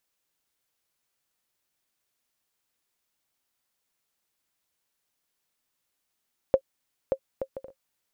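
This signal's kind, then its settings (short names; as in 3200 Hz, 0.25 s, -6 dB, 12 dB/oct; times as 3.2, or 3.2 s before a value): bouncing ball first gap 0.58 s, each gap 0.51, 535 Hz, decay 71 ms -8.5 dBFS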